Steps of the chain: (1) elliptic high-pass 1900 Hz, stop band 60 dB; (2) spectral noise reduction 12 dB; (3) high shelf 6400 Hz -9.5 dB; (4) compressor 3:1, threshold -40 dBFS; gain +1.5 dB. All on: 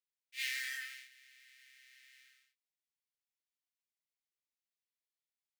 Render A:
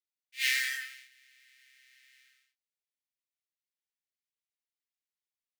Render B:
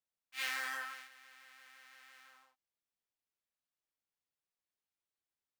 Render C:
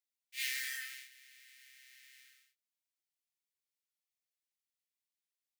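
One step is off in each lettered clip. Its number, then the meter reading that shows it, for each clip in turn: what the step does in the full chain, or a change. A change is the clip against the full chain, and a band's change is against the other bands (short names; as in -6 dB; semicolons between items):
4, mean gain reduction 2.0 dB; 1, 1 kHz band +22.5 dB; 3, 8 kHz band +5.0 dB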